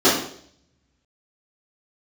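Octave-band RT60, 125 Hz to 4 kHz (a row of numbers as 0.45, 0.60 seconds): 1.5, 0.65, 0.65, 0.55, 0.55, 0.60 seconds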